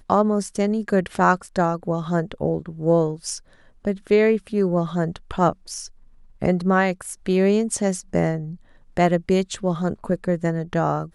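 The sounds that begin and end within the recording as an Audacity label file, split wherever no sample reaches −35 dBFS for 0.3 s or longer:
3.850000	5.870000	sound
6.420000	8.550000	sound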